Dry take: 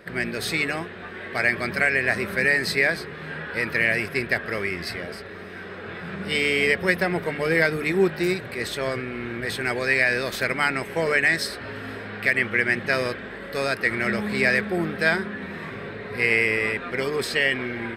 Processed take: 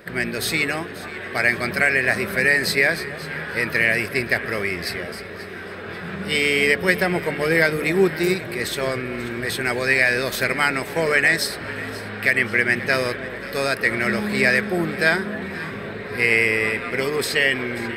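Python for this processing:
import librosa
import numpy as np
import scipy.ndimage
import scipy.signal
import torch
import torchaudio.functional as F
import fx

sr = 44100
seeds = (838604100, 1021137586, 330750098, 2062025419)

p1 = fx.high_shelf(x, sr, hz=9200.0, db=8.5)
p2 = p1 + fx.echo_alternate(p1, sr, ms=268, hz=880.0, feedback_pct=69, wet_db=-13.5, dry=0)
y = F.gain(torch.from_numpy(p2), 2.5).numpy()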